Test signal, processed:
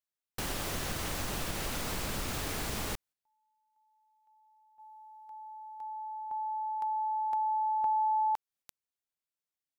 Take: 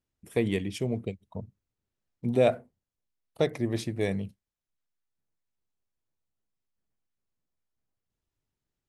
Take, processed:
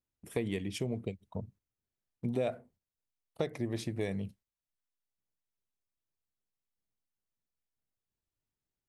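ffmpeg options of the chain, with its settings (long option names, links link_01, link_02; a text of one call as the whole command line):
ffmpeg -i in.wav -af "agate=range=-7dB:threshold=-55dB:ratio=16:detection=peak,acompressor=threshold=-32dB:ratio=3" out.wav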